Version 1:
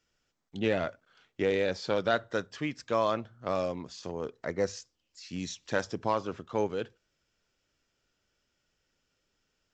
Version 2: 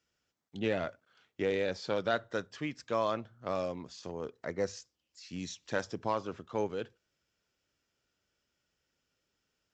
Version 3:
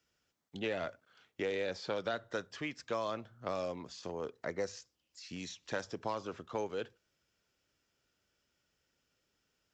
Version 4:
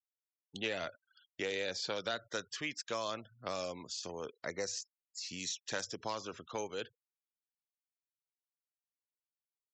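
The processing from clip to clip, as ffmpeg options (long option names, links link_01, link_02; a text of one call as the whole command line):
ffmpeg -i in.wav -af "highpass=49,volume=-3.5dB" out.wav
ffmpeg -i in.wav -filter_complex "[0:a]acrossover=split=390|3600[link_01][link_02][link_03];[link_01]acompressor=threshold=-46dB:ratio=4[link_04];[link_02]acompressor=threshold=-36dB:ratio=4[link_05];[link_03]acompressor=threshold=-51dB:ratio=4[link_06];[link_04][link_05][link_06]amix=inputs=3:normalize=0,volume=1.5dB" out.wav
ffmpeg -i in.wav -af "crystalizer=i=5:c=0,afftfilt=real='re*gte(hypot(re,im),0.00355)':imag='im*gte(hypot(re,im),0.00355)':win_size=1024:overlap=0.75,volume=-3.5dB" out.wav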